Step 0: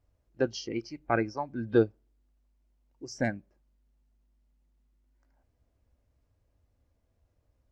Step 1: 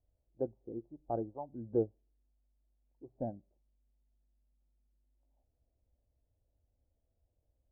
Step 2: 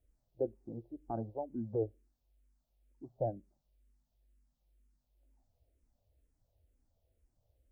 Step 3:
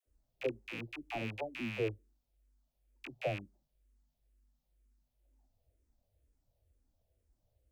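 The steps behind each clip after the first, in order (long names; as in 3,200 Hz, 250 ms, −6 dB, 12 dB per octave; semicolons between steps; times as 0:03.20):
Butterworth low-pass 800 Hz 36 dB per octave; parametric band 190 Hz −6 dB 2.9 octaves; level −4 dB
brickwall limiter −28 dBFS, peak gain reduction 8.5 dB; frequency shifter mixed with the dry sound −2.1 Hz; level +6.5 dB
loose part that buzzes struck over −49 dBFS, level −29 dBFS; all-pass dispersion lows, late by 67 ms, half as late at 540 Hz; level −1 dB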